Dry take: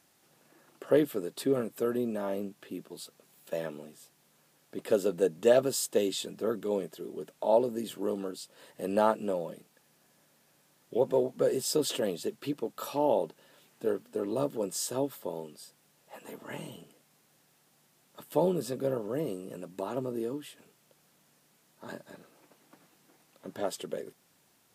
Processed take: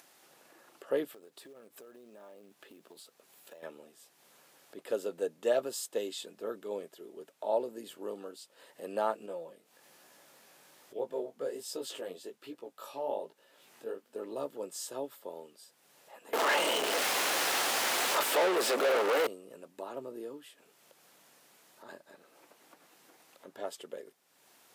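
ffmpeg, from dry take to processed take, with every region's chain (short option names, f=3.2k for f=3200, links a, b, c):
-filter_complex "[0:a]asettb=1/sr,asplit=3[a][b][c];[a]atrim=end=1.124[d];[b]atrim=start=1.12:end=3.63,asetpts=PTS-STARTPTS,afade=t=in:d=0.004:c=qsin,afade=t=out:st=2.506:d=0.004:c=qsin,acrusher=bits=5:mode=log:mix=0:aa=0.000001,acompressor=threshold=-41dB:ratio=16:attack=3.2:release=140:knee=1:detection=peak[e];[c]atrim=start=3.626[f];[d][e]acrossfade=d=0.004:c1=hsin:c2=qsin[g];[g][f]acrossfade=d=0.004:c1=qsin:c2=hsin,asettb=1/sr,asplit=3[h][i][j];[h]atrim=end=9.264[k];[i]atrim=start=9.26:end=14.1,asetpts=PTS-STARTPTS,afade=t=in:d=0.004:c=qsin,afade=t=out:st=4.836:d=0.004:c=qsin,acompressor=mode=upward:threshold=-48dB:ratio=2.5:attack=3.2:release=140:knee=2.83:detection=peak,flanger=delay=16:depth=6.2:speed=1.2[l];[j]atrim=start=14.096[m];[k][l]acrossfade=d=0.004:c1=hsin:c2=qsin[n];[n][m]acrossfade=d=0.004:c1=qsin:c2=hsin,asettb=1/sr,asplit=3[o][p][q];[o]atrim=end=16.334[r];[p]atrim=start=16.33:end=19.27,asetpts=PTS-STARTPTS,afade=t=in:d=0.004:c=qsin,afade=t=out:st=2.936:d=0.004:c=qsin,aeval=exprs='val(0)+0.5*0.0141*sgn(val(0))':c=same,asplit=2[s][t];[t]highpass=f=720:p=1,volume=38dB,asoftclip=type=tanh:threshold=-13.5dB[u];[s][u]amix=inputs=2:normalize=0,lowpass=f=4.2k:p=1,volume=-6dB,highpass=290[v];[q]atrim=start=19.266[w];[r][v]acrossfade=d=0.004:c1=hsin:c2=qsin[x];[x][w]acrossfade=d=0.004:c1=qsin:c2=hsin,bass=f=250:g=-15,treble=f=4k:g=-2,acompressor=mode=upward:threshold=-45dB:ratio=2.5,volume=-5dB"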